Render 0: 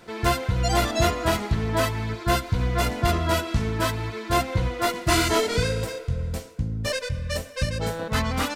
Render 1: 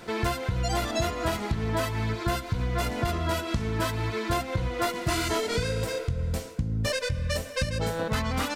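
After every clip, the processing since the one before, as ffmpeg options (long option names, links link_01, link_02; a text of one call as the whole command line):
ffmpeg -i in.wav -af "acompressor=threshold=-29dB:ratio=6,volume=4.5dB" out.wav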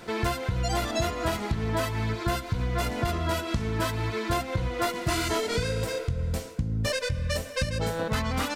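ffmpeg -i in.wav -af anull out.wav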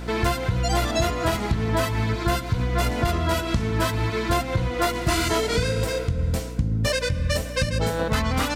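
ffmpeg -i in.wav -af "aeval=exprs='val(0)+0.0141*(sin(2*PI*60*n/s)+sin(2*PI*2*60*n/s)/2+sin(2*PI*3*60*n/s)/3+sin(2*PI*4*60*n/s)/4+sin(2*PI*5*60*n/s)/5)':channel_layout=same,volume=4.5dB" out.wav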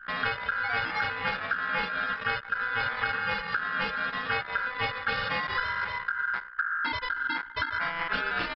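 ffmpeg -i in.wav -af "aresample=8000,aresample=44100,aeval=exprs='val(0)*sin(2*PI*1500*n/s)':channel_layout=same,anlmdn=25.1,volume=-4dB" out.wav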